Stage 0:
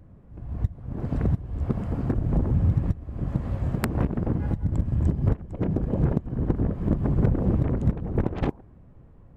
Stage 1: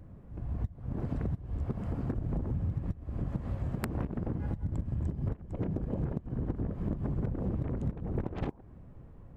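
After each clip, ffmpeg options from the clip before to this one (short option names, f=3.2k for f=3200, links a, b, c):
-af "acompressor=threshold=-31dB:ratio=4"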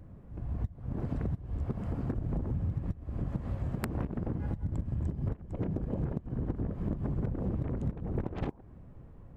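-af anull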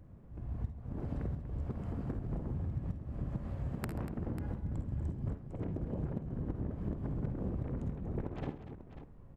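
-af "aecho=1:1:52|66|78|134|240|543:0.299|0.211|0.1|0.119|0.251|0.251,volume=-5dB"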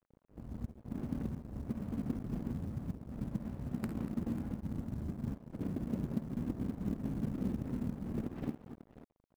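-af "equalizer=f=230:w=1.5:g=13.5,aeval=exprs='sgn(val(0))*max(abs(val(0))-0.00631,0)':c=same,acrusher=bits=8:mode=log:mix=0:aa=0.000001,volume=-5dB"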